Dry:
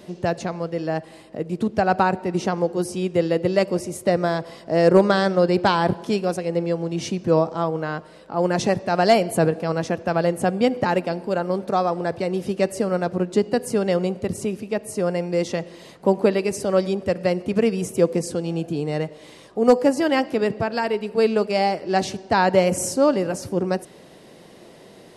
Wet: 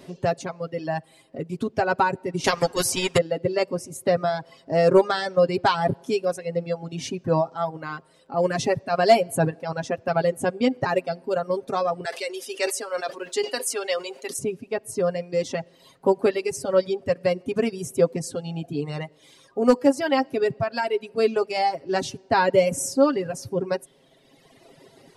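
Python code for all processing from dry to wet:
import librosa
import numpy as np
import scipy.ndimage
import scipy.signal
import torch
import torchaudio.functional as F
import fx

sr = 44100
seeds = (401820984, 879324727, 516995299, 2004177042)

y = fx.chain(x, sr, fx.transient(attack_db=8, sustain_db=-1),
    fx.spectral_comp(ratio=2.0), at=(2.44, 3.18))
y = fx.chain(y, sr, fx.highpass(hz=320.0, slope=24),
    fx.tilt_shelf(db=-8.0, hz=1100.0),
    fx.sustainer(db_per_s=75.0), at=(12.05, 14.39))
y = y + 0.63 * np.pad(y, (int(7.4 * sr / 1000.0), 0))[:len(y)]
y = fx.dereverb_blind(y, sr, rt60_s=1.8)
y = F.gain(torch.from_numpy(y), -2.5).numpy()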